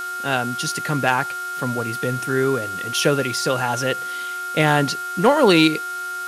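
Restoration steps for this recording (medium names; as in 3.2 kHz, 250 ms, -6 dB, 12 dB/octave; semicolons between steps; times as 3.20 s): clip repair -5 dBFS; de-hum 366 Hz, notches 29; band-stop 1.4 kHz, Q 30; noise print and reduce 30 dB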